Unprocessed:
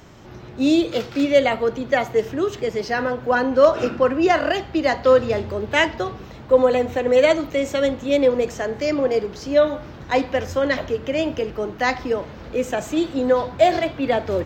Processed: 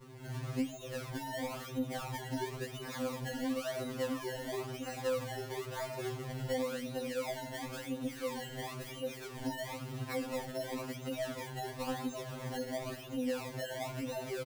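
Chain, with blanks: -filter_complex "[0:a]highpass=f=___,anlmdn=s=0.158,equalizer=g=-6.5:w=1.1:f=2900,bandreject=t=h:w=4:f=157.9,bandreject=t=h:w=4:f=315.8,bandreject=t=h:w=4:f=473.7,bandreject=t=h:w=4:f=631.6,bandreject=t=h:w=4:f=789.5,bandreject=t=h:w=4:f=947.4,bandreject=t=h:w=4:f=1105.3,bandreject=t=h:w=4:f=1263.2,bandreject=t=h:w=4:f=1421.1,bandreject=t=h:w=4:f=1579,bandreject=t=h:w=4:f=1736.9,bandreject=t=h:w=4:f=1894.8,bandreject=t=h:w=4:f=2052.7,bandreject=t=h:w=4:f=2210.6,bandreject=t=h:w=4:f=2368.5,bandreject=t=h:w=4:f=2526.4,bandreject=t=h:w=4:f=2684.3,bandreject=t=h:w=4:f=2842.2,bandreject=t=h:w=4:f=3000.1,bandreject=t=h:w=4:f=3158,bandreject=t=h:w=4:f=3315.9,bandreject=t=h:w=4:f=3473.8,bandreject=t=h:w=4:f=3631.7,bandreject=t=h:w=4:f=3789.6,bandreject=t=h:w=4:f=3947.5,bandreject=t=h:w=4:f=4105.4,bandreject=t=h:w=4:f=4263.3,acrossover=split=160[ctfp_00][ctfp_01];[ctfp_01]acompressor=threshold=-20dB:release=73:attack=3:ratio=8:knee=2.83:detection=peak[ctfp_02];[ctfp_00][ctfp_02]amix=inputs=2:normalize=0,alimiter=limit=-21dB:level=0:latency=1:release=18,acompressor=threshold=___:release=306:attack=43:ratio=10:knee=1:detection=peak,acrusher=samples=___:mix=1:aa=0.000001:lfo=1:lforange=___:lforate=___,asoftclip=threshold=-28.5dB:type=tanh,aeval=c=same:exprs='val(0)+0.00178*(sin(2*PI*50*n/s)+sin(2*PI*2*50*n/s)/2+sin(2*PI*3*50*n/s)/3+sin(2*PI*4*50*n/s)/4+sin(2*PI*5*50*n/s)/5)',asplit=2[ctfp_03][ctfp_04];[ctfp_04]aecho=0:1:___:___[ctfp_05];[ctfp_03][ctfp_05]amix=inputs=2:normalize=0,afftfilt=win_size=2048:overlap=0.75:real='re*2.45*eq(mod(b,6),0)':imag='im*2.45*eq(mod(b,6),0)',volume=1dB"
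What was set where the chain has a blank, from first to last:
53, -36dB, 25, 25, 0.97, 76, 0.141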